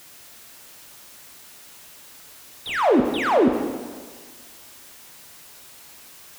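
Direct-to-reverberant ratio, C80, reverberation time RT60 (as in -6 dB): 4.0 dB, 7.5 dB, 1.6 s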